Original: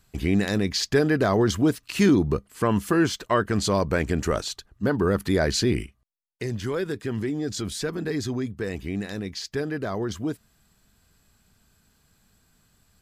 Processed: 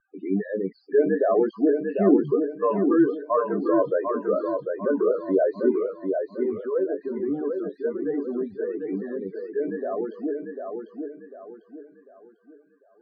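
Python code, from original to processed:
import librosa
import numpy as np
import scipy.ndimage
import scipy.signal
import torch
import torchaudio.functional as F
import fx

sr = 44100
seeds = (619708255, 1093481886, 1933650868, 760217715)

p1 = fx.law_mismatch(x, sr, coded='mu')
p2 = scipy.signal.sosfilt(scipy.signal.butter(2, 590.0, 'highpass', fs=sr, output='sos'), p1)
p3 = fx.level_steps(p2, sr, step_db=10)
p4 = p2 + (p3 * 10.0 ** (-1.5 / 20.0))
p5 = fx.doubler(p4, sr, ms=21.0, db=-7.0)
p6 = fx.spec_topn(p5, sr, count=8)
p7 = scipy.signal.sosfilt(scipy.signal.butter(2, 1100.0, 'lowpass', fs=sr, output='sos'), p6)
p8 = fx.tilt_eq(p7, sr, slope=-4.5)
y = p8 + fx.echo_feedback(p8, sr, ms=747, feedback_pct=37, wet_db=-5, dry=0)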